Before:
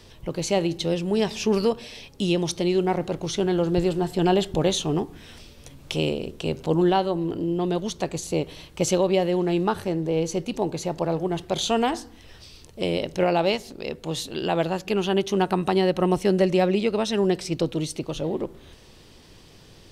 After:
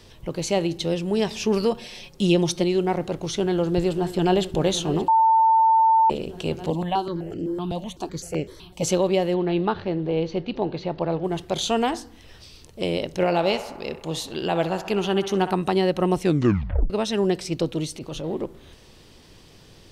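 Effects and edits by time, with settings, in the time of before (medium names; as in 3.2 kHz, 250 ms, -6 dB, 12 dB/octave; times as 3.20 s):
1.71–2.64 s: comb 5.6 ms
3.38–4.43 s: echo throw 580 ms, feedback 85%, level -14.5 dB
5.08–6.10 s: bleep 895 Hz -13.5 dBFS
6.70–8.83 s: stepped phaser 7.9 Hz 390–3700 Hz
9.34–11.24 s: steep low-pass 4.4 kHz
13.11–15.52 s: band-passed feedback delay 64 ms, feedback 80%, band-pass 1.1 kHz, level -9.5 dB
16.21 s: tape stop 0.69 s
17.86–18.36 s: transient shaper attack -9 dB, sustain +1 dB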